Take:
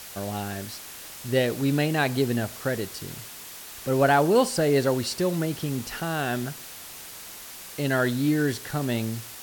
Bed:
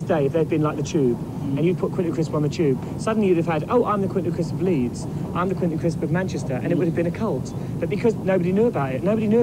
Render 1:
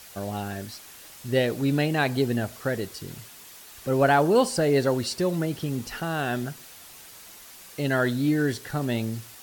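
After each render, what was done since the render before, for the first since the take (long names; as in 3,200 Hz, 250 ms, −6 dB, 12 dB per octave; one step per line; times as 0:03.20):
broadband denoise 6 dB, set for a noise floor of −42 dBFS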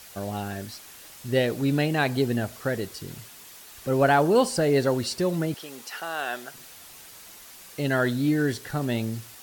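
0:05.54–0:06.54: high-pass filter 590 Hz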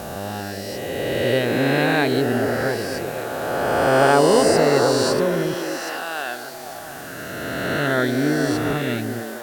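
peak hold with a rise ahead of every peak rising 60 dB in 2.81 s
on a send: echo through a band-pass that steps 236 ms, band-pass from 330 Hz, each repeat 0.7 octaves, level −2 dB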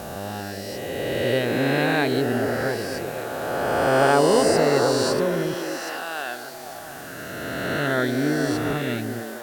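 level −2.5 dB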